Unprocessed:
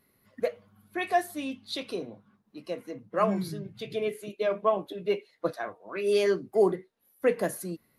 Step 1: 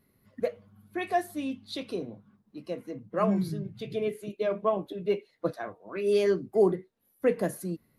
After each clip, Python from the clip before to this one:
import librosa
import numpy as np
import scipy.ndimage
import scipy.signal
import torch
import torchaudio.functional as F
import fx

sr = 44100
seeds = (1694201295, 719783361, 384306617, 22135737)

y = fx.low_shelf(x, sr, hz=360.0, db=9.5)
y = y * 10.0 ** (-4.0 / 20.0)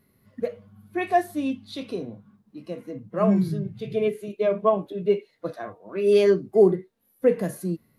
y = fx.hpss(x, sr, part='percussive', gain_db=-9)
y = y * 10.0 ** (6.5 / 20.0)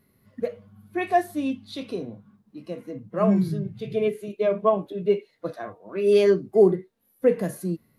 y = x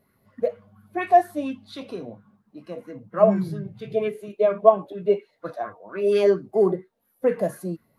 y = fx.bell_lfo(x, sr, hz=4.3, low_hz=570.0, high_hz=1600.0, db=14)
y = y * 10.0 ** (-3.5 / 20.0)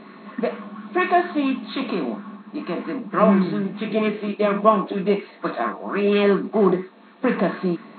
y = fx.bin_compress(x, sr, power=0.6)
y = fx.brickwall_bandpass(y, sr, low_hz=170.0, high_hz=4300.0)
y = fx.band_shelf(y, sr, hz=560.0, db=-11.0, octaves=1.1)
y = y * 10.0 ** (6.0 / 20.0)